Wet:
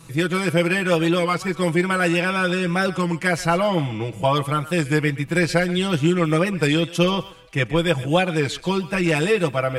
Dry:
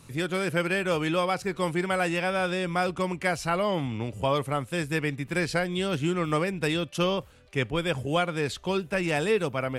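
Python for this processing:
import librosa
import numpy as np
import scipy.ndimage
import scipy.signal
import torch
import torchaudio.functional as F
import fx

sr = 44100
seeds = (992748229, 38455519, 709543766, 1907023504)

y = x + 0.85 * np.pad(x, (int(6.1 * sr / 1000.0), 0))[:len(x)]
y = fx.echo_thinned(y, sr, ms=127, feedback_pct=31, hz=610.0, wet_db=-15.0)
y = fx.record_warp(y, sr, rpm=33.33, depth_cents=100.0)
y = F.gain(torch.from_numpy(y), 4.0).numpy()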